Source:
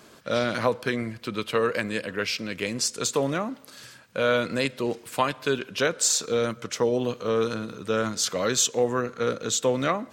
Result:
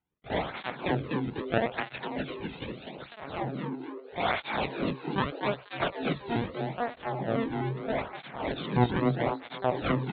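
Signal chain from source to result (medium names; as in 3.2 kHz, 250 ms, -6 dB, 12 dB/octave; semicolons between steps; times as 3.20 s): harmony voices +7 st 0 dB; power-law waveshaper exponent 2; LPC vocoder at 8 kHz pitch kept; bass shelf 290 Hz +11.5 dB; on a send: frequency-shifting echo 248 ms, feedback 42%, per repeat +130 Hz, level -5 dB; on the sum: cancelling through-zero flanger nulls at 0.79 Hz, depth 1.8 ms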